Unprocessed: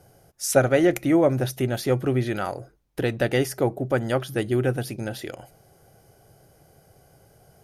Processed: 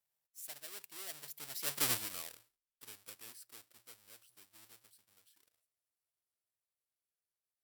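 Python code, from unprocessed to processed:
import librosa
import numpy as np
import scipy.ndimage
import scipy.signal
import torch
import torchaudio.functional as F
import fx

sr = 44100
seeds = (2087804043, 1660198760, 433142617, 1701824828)

y = fx.halfwave_hold(x, sr)
y = fx.doppler_pass(y, sr, speed_mps=44, closest_m=4.1, pass_at_s=1.87)
y = F.preemphasis(torch.from_numpy(y), 0.97).numpy()
y = fx.notch(y, sr, hz=6500.0, q=11.0)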